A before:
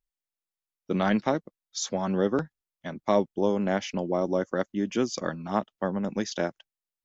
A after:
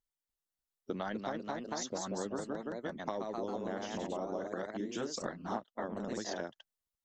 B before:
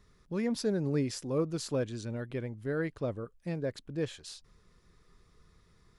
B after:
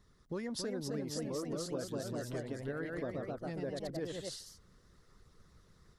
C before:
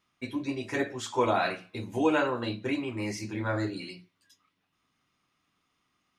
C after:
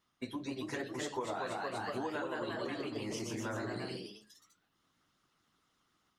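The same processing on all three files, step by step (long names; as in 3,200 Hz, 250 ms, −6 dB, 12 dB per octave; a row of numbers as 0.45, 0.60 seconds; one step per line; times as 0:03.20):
delay with pitch and tempo change per echo 295 ms, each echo +1 semitone, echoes 3
harmonic and percussive parts rebalanced percussive +8 dB
downward compressor 6 to 1, threshold −28 dBFS
parametric band 2,400 Hz −9 dB 0.31 octaves
level −7 dB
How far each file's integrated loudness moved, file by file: −11.0, −5.5, −8.5 LU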